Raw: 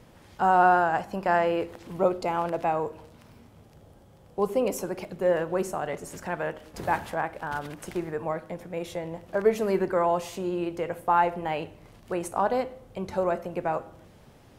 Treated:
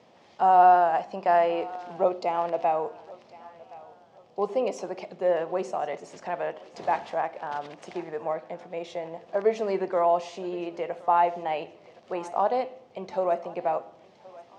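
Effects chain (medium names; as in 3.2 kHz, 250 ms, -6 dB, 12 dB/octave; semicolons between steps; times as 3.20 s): cabinet simulation 260–6000 Hz, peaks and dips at 300 Hz -4 dB, 700 Hz +6 dB, 1.5 kHz -7 dB; thinning echo 1069 ms, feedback 46%, high-pass 530 Hz, level -19.5 dB; trim -1 dB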